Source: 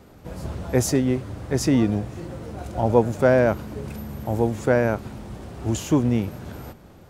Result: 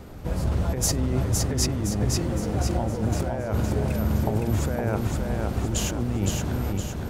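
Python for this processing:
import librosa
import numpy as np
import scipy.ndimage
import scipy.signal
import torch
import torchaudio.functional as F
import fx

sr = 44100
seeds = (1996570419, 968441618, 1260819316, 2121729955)

p1 = fx.low_shelf(x, sr, hz=74.0, db=10.5)
p2 = fx.over_compress(p1, sr, threshold_db=-26.0, ratio=-1.0)
y = p2 + fx.echo_feedback(p2, sr, ms=514, feedback_pct=47, wet_db=-3.5, dry=0)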